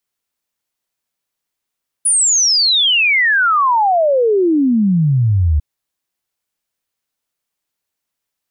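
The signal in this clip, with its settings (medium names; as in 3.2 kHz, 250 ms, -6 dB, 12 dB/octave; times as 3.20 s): log sweep 10 kHz -> 71 Hz 3.55 s -10 dBFS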